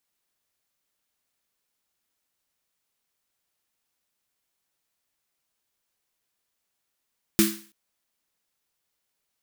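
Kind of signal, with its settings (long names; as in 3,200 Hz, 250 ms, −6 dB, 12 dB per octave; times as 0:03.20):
synth snare length 0.33 s, tones 210 Hz, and 330 Hz, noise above 1,200 Hz, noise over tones −4 dB, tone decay 0.36 s, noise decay 0.44 s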